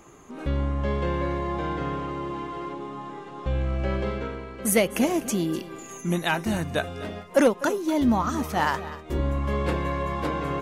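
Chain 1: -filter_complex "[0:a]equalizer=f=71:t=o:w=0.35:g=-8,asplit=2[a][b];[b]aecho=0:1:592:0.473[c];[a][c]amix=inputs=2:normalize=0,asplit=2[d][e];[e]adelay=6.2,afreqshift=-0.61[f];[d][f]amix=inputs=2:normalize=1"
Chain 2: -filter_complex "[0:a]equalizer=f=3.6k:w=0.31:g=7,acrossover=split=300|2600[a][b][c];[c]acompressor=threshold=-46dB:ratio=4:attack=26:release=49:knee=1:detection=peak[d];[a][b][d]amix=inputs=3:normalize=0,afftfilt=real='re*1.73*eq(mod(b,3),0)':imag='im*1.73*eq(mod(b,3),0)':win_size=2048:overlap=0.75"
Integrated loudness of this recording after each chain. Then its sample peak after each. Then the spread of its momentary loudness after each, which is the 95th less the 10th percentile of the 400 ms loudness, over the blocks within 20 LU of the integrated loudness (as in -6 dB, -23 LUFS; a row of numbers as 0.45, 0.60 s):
-29.0, -27.5 LUFS; -9.5, -9.0 dBFS; 12, 11 LU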